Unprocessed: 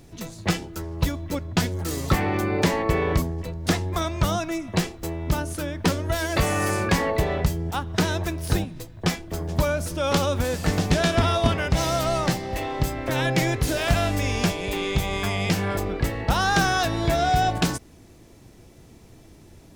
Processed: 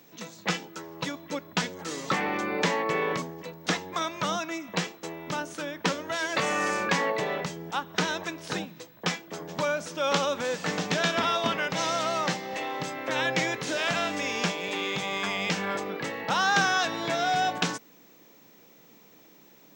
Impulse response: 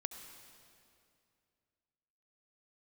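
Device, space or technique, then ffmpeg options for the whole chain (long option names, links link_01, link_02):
old television with a line whistle: -af "highpass=frequency=210:width=0.5412,highpass=frequency=210:width=1.3066,equalizer=frequency=250:width_type=q:width=4:gain=-7,equalizer=frequency=360:width_type=q:width=4:gain=-9,equalizer=frequency=680:width_type=q:width=4:gain=-6,equalizer=frequency=4700:width_type=q:width=4:gain=-4,lowpass=frequency=6900:width=0.5412,lowpass=frequency=6900:width=1.3066,aeval=exprs='val(0)+0.00158*sin(2*PI*15734*n/s)':channel_layout=same"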